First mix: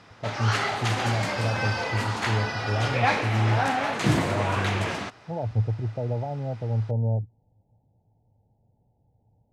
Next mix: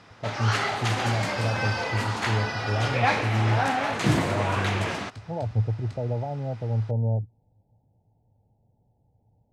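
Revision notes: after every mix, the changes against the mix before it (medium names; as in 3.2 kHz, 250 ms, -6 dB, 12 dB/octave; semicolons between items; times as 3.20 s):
second sound: unmuted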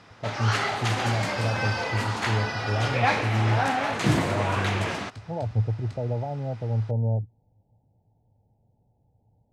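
no change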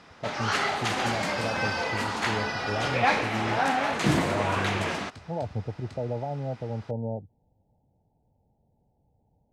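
master: add peaking EQ 110 Hz -13 dB 0.24 oct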